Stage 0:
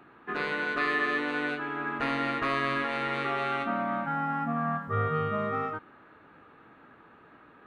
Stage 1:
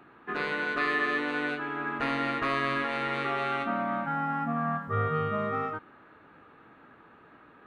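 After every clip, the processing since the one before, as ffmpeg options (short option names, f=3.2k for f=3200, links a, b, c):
-af anull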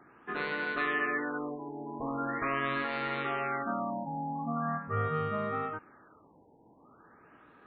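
-af "afftfilt=real='re*lt(b*sr/1024,970*pow(4800/970,0.5+0.5*sin(2*PI*0.42*pts/sr)))':imag='im*lt(b*sr/1024,970*pow(4800/970,0.5+0.5*sin(2*PI*0.42*pts/sr)))':win_size=1024:overlap=0.75,volume=-3dB"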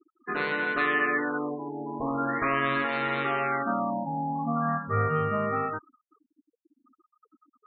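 -af "afftfilt=real='re*gte(hypot(re,im),0.00794)':imag='im*gte(hypot(re,im),0.00794)':win_size=1024:overlap=0.75,volume=5.5dB"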